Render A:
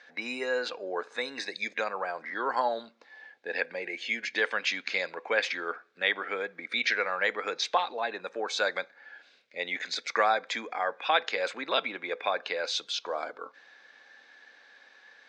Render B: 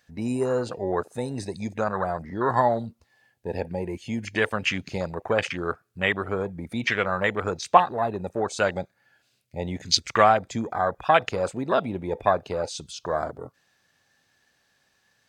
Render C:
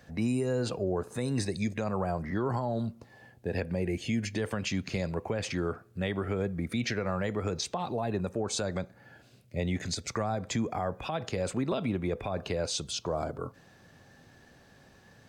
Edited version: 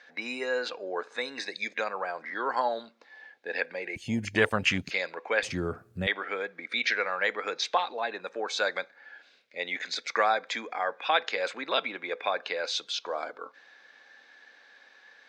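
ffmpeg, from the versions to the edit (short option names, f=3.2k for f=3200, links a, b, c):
-filter_complex "[0:a]asplit=3[a][b][c];[a]atrim=end=3.962[d];[1:a]atrim=start=3.958:end=4.912[e];[b]atrim=start=4.908:end=5.432[f];[2:a]atrim=start=5.428:end=6.072[g];[c]atrim=start=6.068[h];[d][e]acrossfade=d=0.004:c1=hsin:c2=hsin[i];[i][f]acrossfade=d=0.004:c1=hsin:c2=hsin[j];[j][g]acrossfade=d=0.004:c1=hsin:c2=hsin[k];[k][h]acrossfade=d=0.004:c1=hsin:c2=hsin"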